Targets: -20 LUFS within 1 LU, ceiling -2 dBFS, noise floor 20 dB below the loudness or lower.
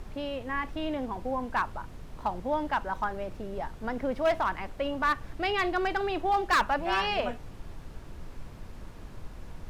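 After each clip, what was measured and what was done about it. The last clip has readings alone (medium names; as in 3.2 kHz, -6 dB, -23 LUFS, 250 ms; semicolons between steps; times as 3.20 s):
clipped samples 0.6%; clipping level -19.5 dBFS; noise floor -45 dBFS; noise floor target -50 dBFS; loudness -30.0 LUFS; peak level -19.5 dBFS; loudness target -20.0 LUFS
-> clip repair -19.5 dBFS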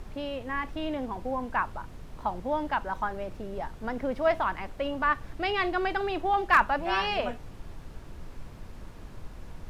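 clipped samples 0.0%; noise floor -45 dBFS; noise floor target -50 dBFS
-> noise print and reduce 6 dB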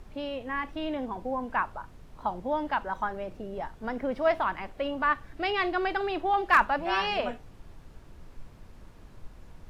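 noise floor -51 dBFS; loudness -29.5 LUFS; peak level -10.5 dBFS; loudness target -20.0 LUFS
-> trim +9.5 dB; peak limiter -2 dBFS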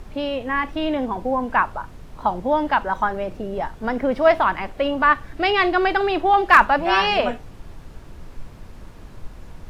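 loudness -20.0 LUFS; peak level -2.0 dBFS; noise floor -41 dBFS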